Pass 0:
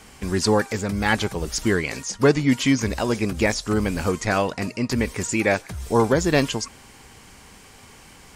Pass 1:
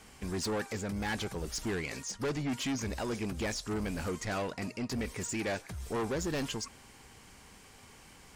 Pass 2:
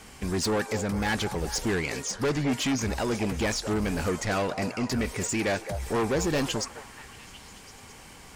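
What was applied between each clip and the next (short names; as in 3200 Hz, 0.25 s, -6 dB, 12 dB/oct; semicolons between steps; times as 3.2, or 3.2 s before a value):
soft clip -21.5 dBFS, distortion -7 dB; gain -8 dB
delay with a stepping band-pass 0.213 s, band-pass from 650 Hz, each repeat 0.7 oct, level -6.5 dB; gain +7 dB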